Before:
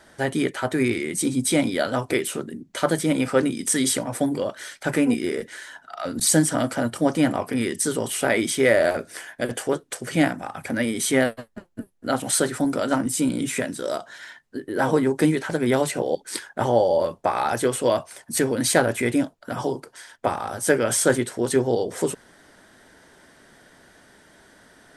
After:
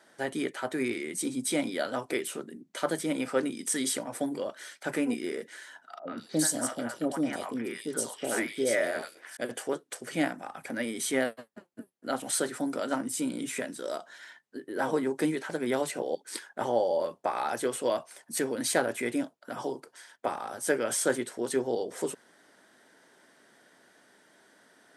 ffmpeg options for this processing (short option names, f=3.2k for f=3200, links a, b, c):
-filter_complex "[0:a]asettb=1/sr,asplit=3[a][b][c];[a]atrim=end=5.994[d];[b]atrim=start=5.99:end=9.37,asetpts=PTS-STARTPTS,afade=t=in:d=0.004:c=qsin,afade=t=out:st=3.376:d=0.004:c=qsin,acrossover=split=710|3100[e][f][g];[f]adelay=80[h];[g]adelay=180[i];[e][h][i]amix=inputs=3:normalize=0,atrim=end_sample=149058[j];[c]atrim=start=9.366[k];[d][j]acrossfade=d=0.004:c1=hsin:c2=qsin[l];[l][k]acrossfade=d=0.004:c1=qsin:c2=hsin,highpass=220,volume=-7.5dB"